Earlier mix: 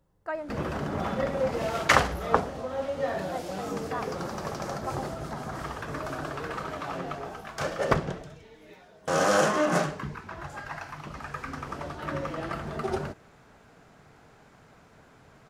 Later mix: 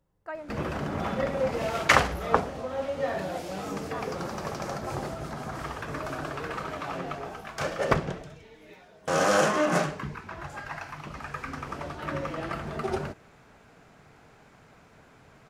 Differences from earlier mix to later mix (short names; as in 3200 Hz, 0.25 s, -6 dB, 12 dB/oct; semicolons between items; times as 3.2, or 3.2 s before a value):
speech -4.5 dB; master: add bell 2400 Hz +3 dB 0.5 oct